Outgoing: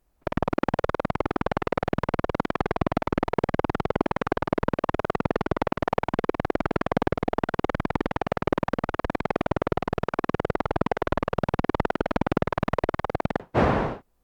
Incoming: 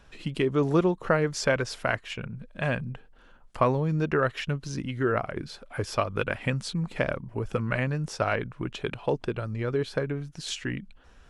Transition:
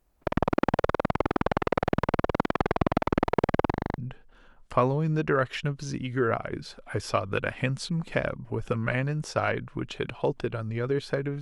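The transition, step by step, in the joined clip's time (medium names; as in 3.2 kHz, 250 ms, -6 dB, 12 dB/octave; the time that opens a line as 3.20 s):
outgoing
3.70 s: stutter in place 0.04 s, 7 plays
3.98 s: go over to incoming from 2.82 s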